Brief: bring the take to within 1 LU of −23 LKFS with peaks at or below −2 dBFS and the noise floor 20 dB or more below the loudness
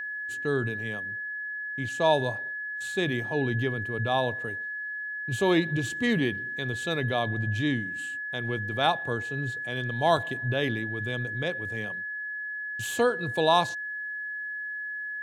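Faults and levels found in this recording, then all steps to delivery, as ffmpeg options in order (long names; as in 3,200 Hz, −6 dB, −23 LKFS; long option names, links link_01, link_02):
interfering tone 1,700 Hz; level of the tone −32 dBFS; integrated loudness −28.5 LKFS; sample peak −9.0 dBFS; target loudness −23.0 LKFS
→ -af "bandreject=frequency=1700:width=30"
-af "volume=5.5dB"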